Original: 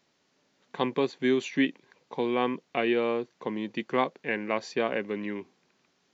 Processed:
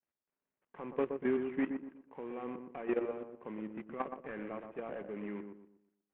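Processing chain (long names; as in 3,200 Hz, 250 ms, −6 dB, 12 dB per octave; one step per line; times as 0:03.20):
variable-slope delta modulation 16 kbit/s
low-pass filter 1,900 Hz 12 dB per octave
downward expander −59 dBFS
low-shelf EQ 130 Hz −6 dB
output level in coarse steps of 13 dB
feedback echo with a low-pass in the loop 121 ms, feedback 37%, low-pass 1,000 Hz, level −5.5 dB
level −3.5 dB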